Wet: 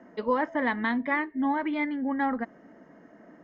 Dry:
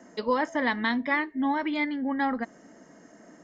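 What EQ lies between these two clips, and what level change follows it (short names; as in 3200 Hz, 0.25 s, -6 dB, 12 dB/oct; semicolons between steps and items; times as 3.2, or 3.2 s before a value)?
LPF 2500 Hz 12 dB/oct; air absorption 55 m; 0.0 dB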